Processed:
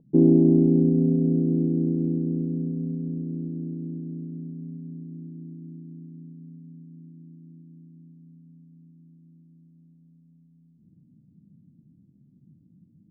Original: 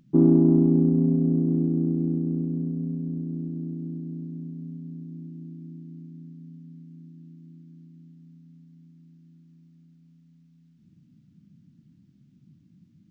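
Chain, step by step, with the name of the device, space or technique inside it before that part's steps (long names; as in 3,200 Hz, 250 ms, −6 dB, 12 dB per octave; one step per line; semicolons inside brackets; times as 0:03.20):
under water (low-pass filter 700 Hz 24 dB per octave; parametric band 460 Hz +8 dB 0.35 octaves)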